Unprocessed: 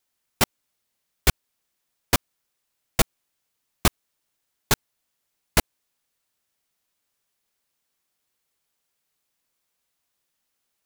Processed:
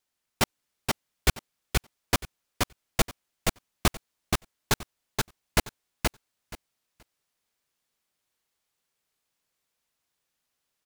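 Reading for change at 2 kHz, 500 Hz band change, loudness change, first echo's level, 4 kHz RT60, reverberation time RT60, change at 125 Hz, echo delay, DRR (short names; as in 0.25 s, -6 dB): -1.5 dB, -1.0 dB, -5.0 dB, -3.0 dB, none, none, -1.0 dB, 0.476 s, none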